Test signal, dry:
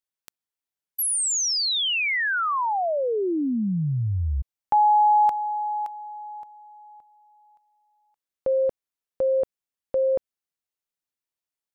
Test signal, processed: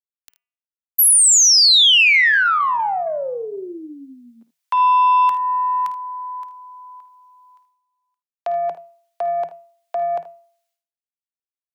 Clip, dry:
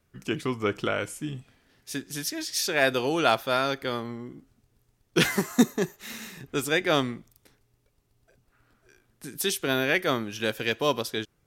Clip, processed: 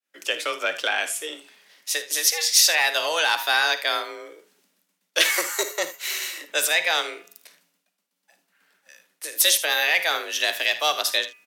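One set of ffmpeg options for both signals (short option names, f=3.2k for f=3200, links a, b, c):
-filter_complex "[0:a]agate=range=-33dB:threshold=-57dB:ratio=3:release=491:detection=peak,bass=f=250:g=-8,treble=f=4k:g=-3,bandreject=f=261.2:t=h:w=4,bandreject=f=522.4:t=h:w=4,bandreject=f=783.6:t=h:w=4,bandreject=f=1.0448k:t=h:w=4,bandreject=f=1.306k:t=h:w=4,bandreject=f=1.5672k:t=h:w=4,bandreject=f=1.8284k:t=h:w=4,bandreject=f=2.0896k:t=h:w=4,bandreject=f=2.3508k:t=h:w=4,bandreject=f=2.612k:t=h:w=4,bandreject=f=2.8732k:t=h:w=4,acrossover=split=120|1600[a][b][c];[a]acompressor=threshold=-53dB:ratio=6:release=274[d];[d][b][c]amix=inputs=3:normalize=0,aeval=exprs='0.398*(cos(1*acos(clip(val(0)/0.398,-1,1)))-cos(1*PI/2))+0.0178*(cos(2*acos(clip(val(0)/0.398,-1,1)))-cos(2*PI/2))+0.0316*(cos(5*acos(clip(val(0)/0.398,-1,1)))-cos(5*PI/2))+0.00562*(cos(7*acos(clip(val(0)/0.398,-1,1)))-cos(7*PI/2))+0.00562*(cos(8*acos(clip(val(0)/0.398,-1,1)))-cos(8*PI/2))':c=same,alimiter=limit=-16.5dB:level=0:latency=1:release=199,afreqshift=160,tiltshelf=f=1.1k:g=-9,asplit=2[e][f];[f]aecho=0:1:53|78:0.2|0.158[g];[e][g]amix=inputs=2:normalize=0,volume=4dB"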